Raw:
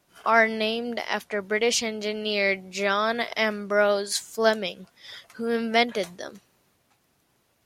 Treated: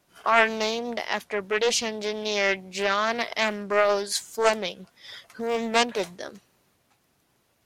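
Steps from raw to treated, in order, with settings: loudspeaker Doppler distortion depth 0.36 ms

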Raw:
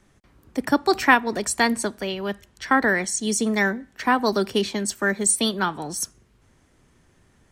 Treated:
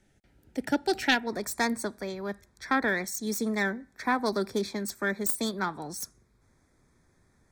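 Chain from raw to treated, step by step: self-modulated delay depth 0.13 ms; Butterworth band-stop 1.1 kHz, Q 2.8, from 1.26 s 2.9 kHz; trim -6.5 dB

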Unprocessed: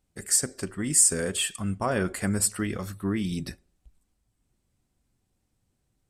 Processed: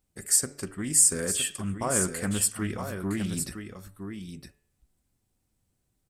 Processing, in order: treble shelf 11 kHz +10 dB; de-hum 143.8 Hz, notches 23; on a send: delay 963 ms -8 dB; on the sum: loudspeaker Doppler distortion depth 0.16 ms; trim -2.5 dB

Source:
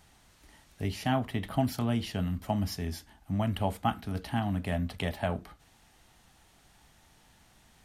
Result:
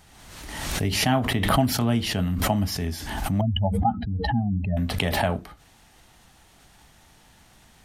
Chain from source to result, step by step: 3.41–4.77 s: spectral contrast enhancement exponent 2.8; swell ahead of each attack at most 40 dB/s; trim +6 dB

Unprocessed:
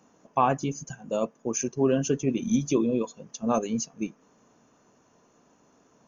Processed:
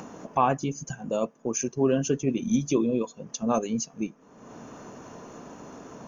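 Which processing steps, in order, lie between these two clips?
upward compressor, threshold -26 dBFS; tape noise reduction on one side only decoder only

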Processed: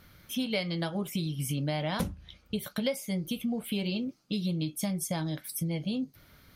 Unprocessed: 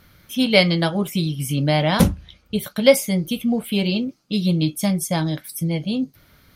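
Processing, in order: compression 5:1, threshold -25 dBFS, peak gain reduction 16 dB; trim -4 dB

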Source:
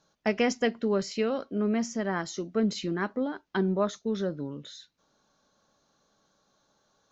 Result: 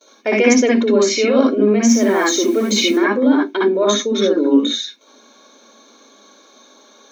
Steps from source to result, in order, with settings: in parallel at +3 dB: compressor with a negative ratio -33 dBFS, ratio -0.5; on the sum: dynamic bell 3.7 kHz, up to -3 dB, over -44 dBFS, Q 1; gate with hold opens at -49 dBFS; tilt shelf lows -7 dB, about 660 Hz; 1.87–2.97 s: added noise white -44 dBFS; brick-wall FIR high-pass 220 Hz; reverberation RT60 0.15 s, pre-delay 58 ms, DRR -2 dB; trim -1 dB

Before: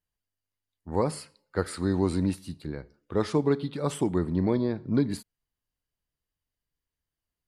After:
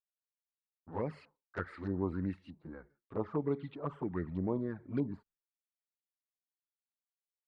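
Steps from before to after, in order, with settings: LFO low-pass saw up 1.6 Hz 840–2600 Hz; expander -48 dBFS; touch-sensitive flanger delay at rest 11.5 ms, full sweep at -19 dBFS; trim -9 dB

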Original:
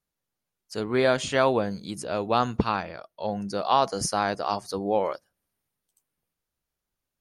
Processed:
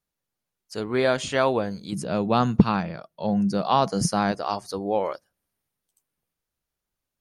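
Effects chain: 1.92–4.32 s: peaking EQ 170 Hz +13.5 dB 1.1 oct

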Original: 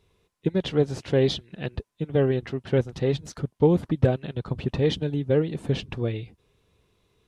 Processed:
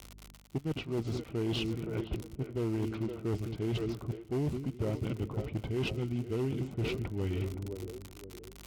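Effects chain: hum 60 Hz, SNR 30 dB; two-band feedback delay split 420 Hz, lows 178 ms, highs 436 ms, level -12 dB; in parallel at -10 dB: sample-rate reducer 2.9 kHz, jitter 20%; on the sum: level-controlled noise filter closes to 390 Hz, open at -18.5 dBFS; crackle 100 per s -33 dBFS; tape speed -16%; reverse; compression 6:1, threshold -30 dBFS, peak gain reduction 18.5 dB; reverse; band-stop 1.7 kHz, Q 6.2; one-sided clip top -28.5 dBFS, bottom -26 dBFS

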